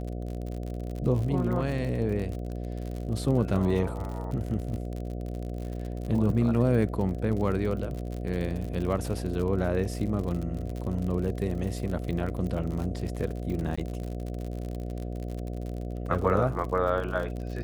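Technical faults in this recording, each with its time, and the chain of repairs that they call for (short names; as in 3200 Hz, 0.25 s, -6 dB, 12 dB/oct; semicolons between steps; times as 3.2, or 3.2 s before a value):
buzz 60 Hz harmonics 12 -34 dBFS
crackle 58/s -33 dBFS
13.76–13.78 gap 15 ms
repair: de-click; de-hum 60 Hz, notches 12; interpolate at 13.76, 15 ms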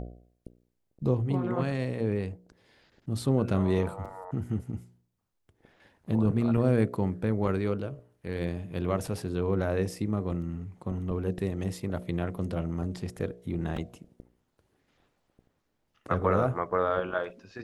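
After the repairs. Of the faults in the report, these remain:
none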